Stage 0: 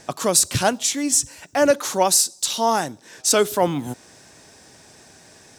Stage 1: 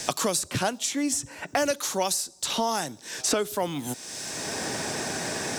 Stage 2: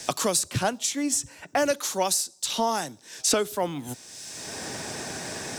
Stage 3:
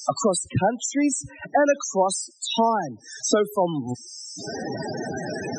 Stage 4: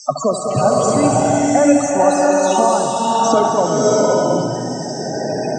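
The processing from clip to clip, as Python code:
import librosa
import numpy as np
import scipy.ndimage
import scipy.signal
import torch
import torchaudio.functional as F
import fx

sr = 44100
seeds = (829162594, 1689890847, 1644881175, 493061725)

y1 = fx.band_squash(x, sr, depth_pct=100)
y1 = F.gain(torch.from_numpy(y1), -7.0).numpy()
y2 = fx.band_widen(y1, sr, depth_pct=70)
y3 = fx.spec_topn(y2, sr, count=16)
y3 = fx.band_squash(y3, sr, depth_pct=40)
y3 = F.gain(torch.from_numpy(y3), 6.0).numpy()
y4 = fx.cabinet(y3, sr, low_hz=120.0, low_slope=12, high_hz=7400.0, hz=(140.0, 630.0, 1200.0, 1700.0, 3700.0), db=(7, 5, 4, -8, -9))
y4 = fx.echo_heads(y4, sr, ms=69, heads='first and third', feedback_pct=54, wet_db=-10.5)
y4 = fx.rev_bloom(y4, sr, seeds[0], attack_ms=680, drr_db=-4.5)
y4 = F.gain(torch.from_numpy(y4), 1.5).numpy()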